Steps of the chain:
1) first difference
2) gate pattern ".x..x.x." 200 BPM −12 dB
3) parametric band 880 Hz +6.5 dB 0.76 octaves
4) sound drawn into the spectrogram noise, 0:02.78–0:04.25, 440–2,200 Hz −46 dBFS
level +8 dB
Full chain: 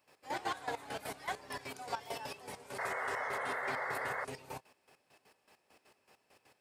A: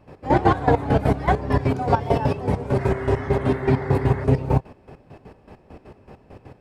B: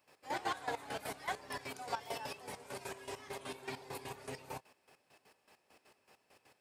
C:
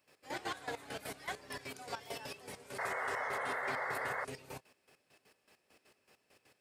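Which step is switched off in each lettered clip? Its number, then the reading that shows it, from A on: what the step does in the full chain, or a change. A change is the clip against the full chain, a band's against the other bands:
1, 125 Hz band +20.0 dB
4, 2 kHz band −6.5 dB
3, 1 kHz band −1.5 dB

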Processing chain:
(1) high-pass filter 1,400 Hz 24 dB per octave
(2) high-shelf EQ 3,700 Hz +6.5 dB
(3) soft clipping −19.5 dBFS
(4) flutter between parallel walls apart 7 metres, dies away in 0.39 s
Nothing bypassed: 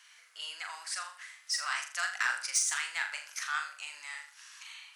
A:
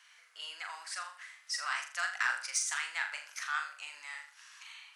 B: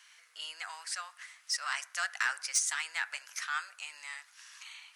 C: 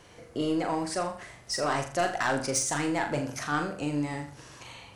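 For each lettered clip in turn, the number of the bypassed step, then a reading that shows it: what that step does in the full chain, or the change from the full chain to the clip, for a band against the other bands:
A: 2, 8 kHz band −3.5 dB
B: 4, echo-to-direct ratio −5.0 dB to none audible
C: 1, 500 Hz band +28.0 dB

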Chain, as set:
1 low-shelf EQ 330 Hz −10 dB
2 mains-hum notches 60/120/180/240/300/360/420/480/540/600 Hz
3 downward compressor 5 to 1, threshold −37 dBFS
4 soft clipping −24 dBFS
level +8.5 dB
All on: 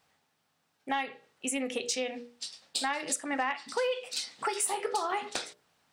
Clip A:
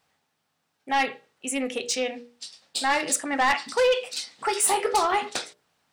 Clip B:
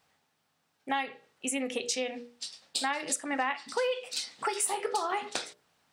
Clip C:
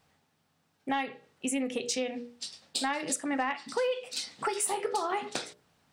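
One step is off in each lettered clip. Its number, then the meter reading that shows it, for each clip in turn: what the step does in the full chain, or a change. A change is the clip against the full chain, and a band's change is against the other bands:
3, average gain reduction 7.0 dB
4, distortion level −28 dB
1, 250 Hz band +4.5 dB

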